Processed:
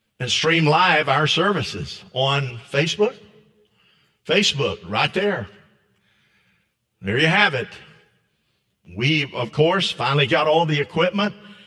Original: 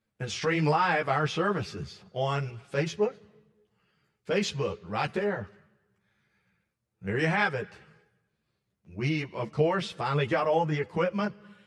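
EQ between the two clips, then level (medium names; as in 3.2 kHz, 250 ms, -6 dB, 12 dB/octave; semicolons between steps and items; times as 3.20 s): peaking EQ 3 kHz +11 dB 0.59 oct; treble shelf 4.6 kHz +5 dB; +7.5 dB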